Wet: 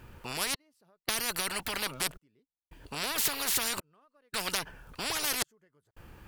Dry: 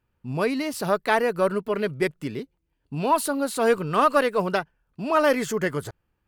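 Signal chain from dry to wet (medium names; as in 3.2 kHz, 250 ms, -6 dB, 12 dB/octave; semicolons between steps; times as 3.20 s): compression, threshold -25 dBFS, peak gain reduction 11 dB; trance gate "xxx...xxx" 83 bpm -60 dB; spectrum-flattening compressor 10:1; trim +4 dB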